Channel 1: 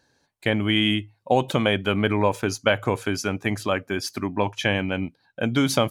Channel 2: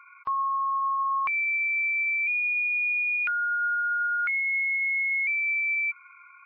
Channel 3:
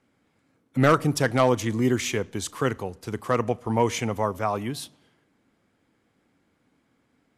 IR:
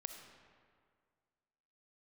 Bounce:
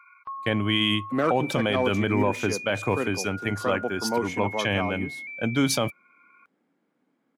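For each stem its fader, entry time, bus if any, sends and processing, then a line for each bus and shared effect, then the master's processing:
-0.5 dB, 0.00 s, no send, three bands expanded up and down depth 70%
-2.0 dB, 0.00 s, no send, auto duck -10 dB, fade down 0.35 s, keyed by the first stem
-3.0 dB, 0.35 s, no send, high-pass 180 Hz 24 dB/octave; treble shelf 2.3 kHz -10.5 dB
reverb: none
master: peak limiter -12.5 dBFS, peak gain reduction 9 dB

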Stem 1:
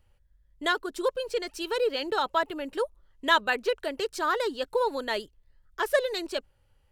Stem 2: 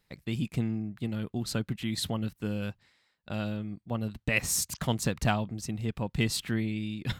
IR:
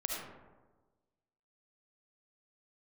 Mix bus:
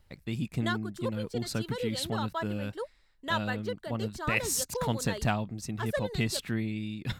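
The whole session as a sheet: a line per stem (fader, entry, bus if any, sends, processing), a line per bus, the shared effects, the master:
+1.5 dB, 0.00 s, no send, band-stop 2.5 kHz, Q 5.2; auto duck -10 dB, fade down 0.85 s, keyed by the second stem
-1.5 dB, 0.00 s, no send, band-stop 3.1 kHz, Q 14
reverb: none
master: none

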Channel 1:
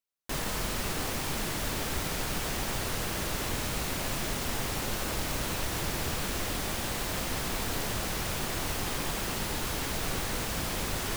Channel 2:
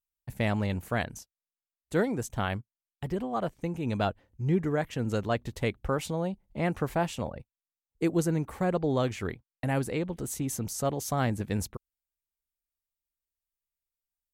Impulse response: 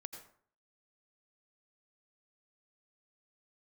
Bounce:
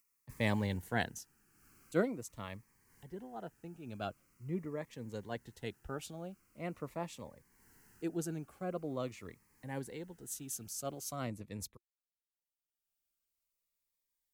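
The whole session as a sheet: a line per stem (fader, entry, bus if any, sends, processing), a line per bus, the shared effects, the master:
-16.5 dB, 0.00 s, send -23.5 dB, static phaser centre 1.5 kHz, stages 4; auto duck -21 dB, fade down 1.25 s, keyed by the second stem
1.90 s -1.5 dB -> 2.26 s -10 dB, 0.00 s, no send, three bands expanded up and down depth 70%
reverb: on, RT60 0.55 s, pre-delay 78 ms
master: bass shelf 130 Hz -9.5 dB; upward compressor, threshold -54 dBFS; Shepard-style phaser falling 0.44 Hz

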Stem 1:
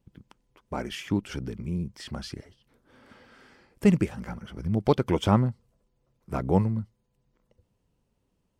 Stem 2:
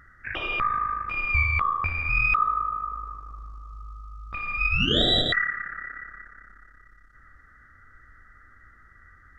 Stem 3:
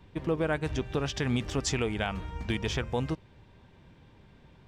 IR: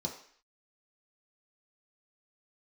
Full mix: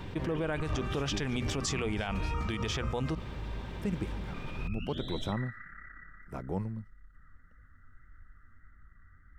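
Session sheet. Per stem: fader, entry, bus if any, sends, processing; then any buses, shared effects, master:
-10.5 dB, 0.00 s, no send, band-stop 4.6 kHz, Q 18
-9.5 dB, 0.00 s, send -9.5 dB, bass shelf 330 Hz +9.5 dB; compression 2.5:1, threshold -30 dBFS, peak gain reduction 12.5 dB; flange 1.7 Hz, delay 0.6 ms, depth 9 ms, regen +45%
-1.0 dB, 0.00 s, no send, hum notches 60/120/180/240 Hz; level flattener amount 50%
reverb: on, RT60 0.55 s, pre-delay 3 ms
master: peak limiter -23 dBFS, peak gain reduction 8 dB

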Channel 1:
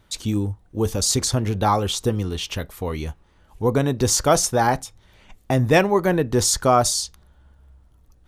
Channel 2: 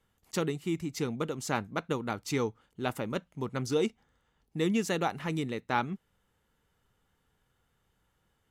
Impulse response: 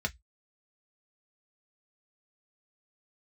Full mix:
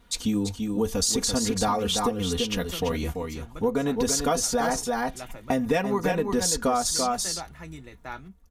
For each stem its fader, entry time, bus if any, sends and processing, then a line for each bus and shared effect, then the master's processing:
-1.5 dB, 0.00 s, no send, echo send -7 dB, comb 4.2 ms, depth 88%
-1.0 dB, 2.35 s, send -3 dB, no echo send, pre-emphasis filter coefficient 0.8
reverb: on, RT60 0.10 s, pre-delay 3 ms
echo: delay 337 ms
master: compression 6:1, threshold -21 dBFS, peak gain reduction 11.5 dB

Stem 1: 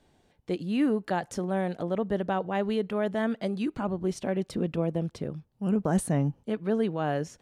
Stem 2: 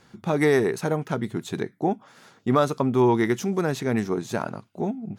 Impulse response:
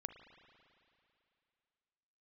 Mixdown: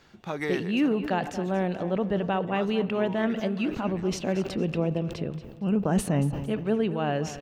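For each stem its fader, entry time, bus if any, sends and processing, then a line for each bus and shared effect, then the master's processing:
-2.0 dB, 0.00 s, send -3.5 dB, echo send -10.5 dB, peaking EQ 2.7 kHz +10 dB 0.21 oct; decay stretcher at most 99 dB/s
-2.0 dB, 0.00 s, no send, no echo send, tilt shelf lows -4.5 dB, about 850 Hz; auto duck -17 dB, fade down 1.05 s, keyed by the first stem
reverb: on, RT60 2.7 s, pre-delay 36 ms
echo: feedback delay 230 ms, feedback 33%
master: peaking EQ 9.7 kHz -11.5 dB 0.85 oct

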